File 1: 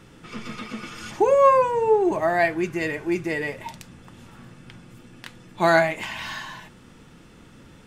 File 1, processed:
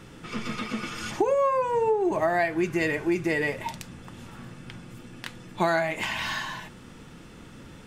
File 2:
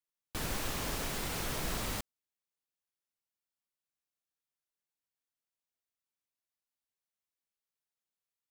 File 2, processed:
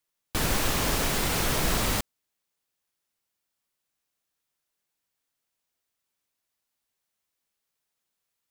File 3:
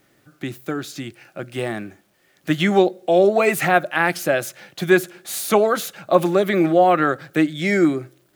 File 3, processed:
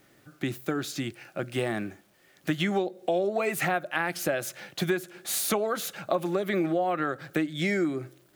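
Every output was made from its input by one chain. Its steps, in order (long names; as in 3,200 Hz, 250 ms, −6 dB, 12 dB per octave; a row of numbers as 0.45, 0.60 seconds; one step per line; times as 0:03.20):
downward compressor 8 to 1, threshold −23 dBFS
normalise the peak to −12 dBFS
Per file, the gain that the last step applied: +2.5, +10.5, −0.5 decibels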